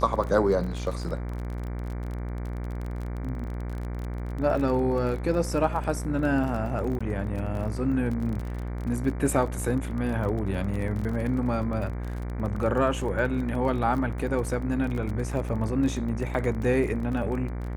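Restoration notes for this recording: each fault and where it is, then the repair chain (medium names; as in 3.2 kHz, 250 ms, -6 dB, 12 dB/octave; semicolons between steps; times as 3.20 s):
buzz 60 Hz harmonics 39 -32 dBFS
crackle 30 per s -32 dBFS
6.99–7.00 s: dropout 15 ms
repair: de-click; de-hum 60 Hz, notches 39; interpolate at 6.99 s, 15 ms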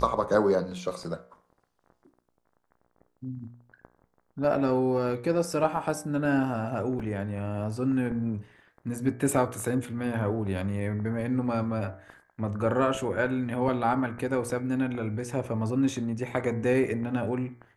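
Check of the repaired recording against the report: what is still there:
nothing left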